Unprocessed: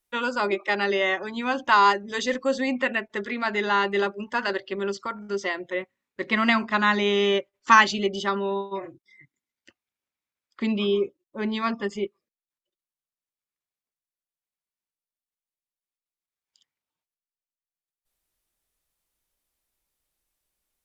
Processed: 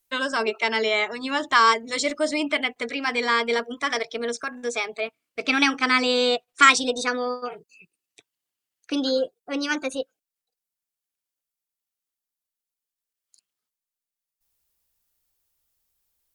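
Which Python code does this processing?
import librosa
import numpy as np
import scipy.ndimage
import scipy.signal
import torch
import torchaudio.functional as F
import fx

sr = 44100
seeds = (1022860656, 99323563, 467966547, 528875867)

y = fx.speed_glide(x, sr, from_pct=109, to_pct=146)
y = fx.high_shelf(y, sr, hz=4700.0, db=9.0)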